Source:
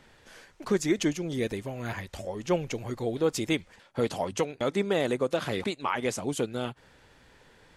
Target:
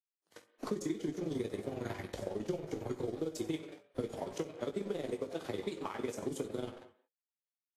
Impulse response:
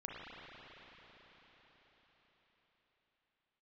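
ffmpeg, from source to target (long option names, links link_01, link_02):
-filter_complex "[0:a]tremolo=f=22:d=0.919,asplit=5[link_01][link_02][link_03][link_04][link_05];[link_02]adelay=92,afreqshift=130,volume=-17.5dB[link_06];[link_03]adelay=184,afreqshift=260,volume=-23.9dB[link_07];[link_04]adelay=276,afreqshift=390,volume=-30.3dB[link_08];[link_05]adelay=368,afreqshift=520,volume=-36.6dB[link_09];[link_01][link_06][link_07][link_08][link_09]amix=inputs=5:normalize=0,agate=range=-17dB:threshold=-51dB:ratio=16:detection=peak,adynamicequalizer=threshold=0.00355:dfrequency=230:dqfactor=3.3:tfrequency=230:tqfactor=3.3:attack=5:release=100:ratio=0.375:range=2:mode=cutabove:tftype=bell,acompressor=threshold=-48dB:ratio=3,equalizer=frequency=360:width_type=o:width=1.7:gain=11.5,aeval=exprs='sgn(val(0))*max(abs(val(0))-0.00178,0)':channel_layout=same,bandreject=frequency=2700:width=17,asplit=2[link_10][link_11];[link_11]adelay=19,volume=-8.5dB[link_12];[link_10][link_12]amix=inputs=2:normalize=0,asplit=2[link_13][link_14];[1:a]atrim=start_sample=2205,afade=type=out:start_time=0.21:duration=0.01,atrim=end_sample=9702,adelay=65[link_15];[link_14][link_15]afir=irnorm=-1:irlink=0,volume=-10.5dB[link_16];[link_13][link_16]amix=inputs=2:normalize=0,acrossover=split=190|3000[link_17][link_18][link_19];[link_18]acompressor=threshold=-40dB:ratio=6[link_20];[link_17][link_20][link_19]amix=inputs=3:normalize=0,volume=5.5dB" -ar 44100 -c:a libvorbis -b:a 32k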